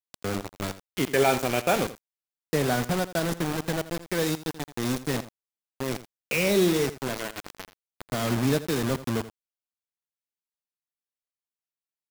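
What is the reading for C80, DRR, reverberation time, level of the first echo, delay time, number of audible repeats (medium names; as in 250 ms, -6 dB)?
no reverb, no reverb, no reverb, -15.0 dB, 83 ms, 1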